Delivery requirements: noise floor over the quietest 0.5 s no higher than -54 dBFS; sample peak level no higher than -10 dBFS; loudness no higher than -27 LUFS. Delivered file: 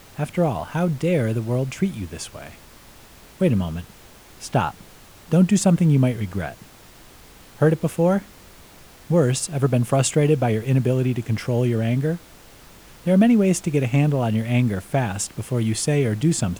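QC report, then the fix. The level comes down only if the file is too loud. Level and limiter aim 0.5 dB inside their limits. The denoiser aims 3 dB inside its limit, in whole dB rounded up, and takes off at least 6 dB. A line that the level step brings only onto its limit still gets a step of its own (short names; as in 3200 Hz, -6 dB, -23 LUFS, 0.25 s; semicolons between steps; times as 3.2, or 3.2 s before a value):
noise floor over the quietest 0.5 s -47 dBFS: fail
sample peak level -5.5 dBFS: fail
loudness -21.0 LUFS: fail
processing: denoiser 6 dB, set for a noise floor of -47 dBFS; gain -6.5 dB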